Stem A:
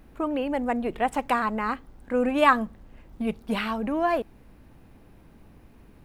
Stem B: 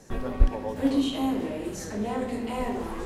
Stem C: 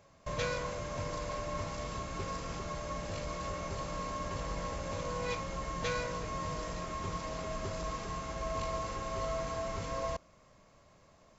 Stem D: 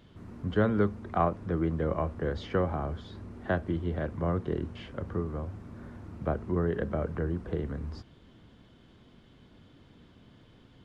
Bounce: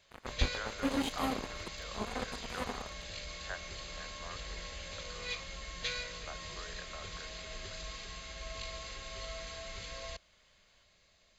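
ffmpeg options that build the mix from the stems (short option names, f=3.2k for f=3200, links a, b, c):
-filter_complex "[1:a]highpass=55,acrusher=bits=3:mix=0:aa=0.5,volume=-7dB[a];[2:a]equalizer=f=125:t=o:w=1:g=-11,equalizer=f=250:t=o:w=1:g=-6,equalizer=f=500:t=o:w=1:g=-4,equalizer=f=1k:t=o:w=1:g=-11,equalizer=f=2k:t=o:w=1:g=4,equalizer=f=4k:t=o:w=1:g=10,volume=-3dB[b];[3:a]highpass=1.2k,volume=-6dB[c];[a][b][c]amix=inputs=3:normalize=0,equalizer=f=300:t=o:w=0.36:g=-4.5,bandreject=f=5.5k:w=8"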